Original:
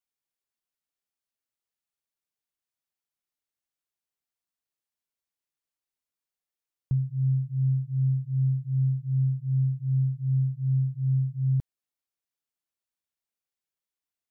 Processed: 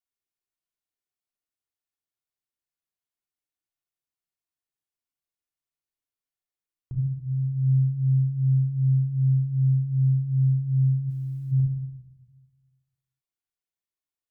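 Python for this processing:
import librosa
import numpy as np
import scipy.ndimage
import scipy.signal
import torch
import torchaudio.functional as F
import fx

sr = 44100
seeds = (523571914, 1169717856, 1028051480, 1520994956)

y = fx.highpass(x, sr, hz=150.0, slope=12, at=(7.0, 7.46), fade=0.02)
y = fx.room_shoebox(y, sr, seeds[0], volume_m3=2600.0, walls='furnished', distance_m=3.3)
y = fx.spectral_comp(y, sr, ratio=4.0, at=(11.09, 11.51), fade=0.02)
y = y * 10.0 ** (-7.0 / 20.0)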